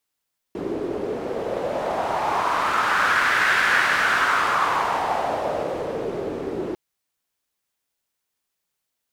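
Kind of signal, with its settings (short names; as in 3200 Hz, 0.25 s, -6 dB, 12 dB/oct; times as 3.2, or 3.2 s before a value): wind-like swept noise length 6.20 s, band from 370 Hz, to 1600 Hz, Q 3.3, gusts 1, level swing 9 dB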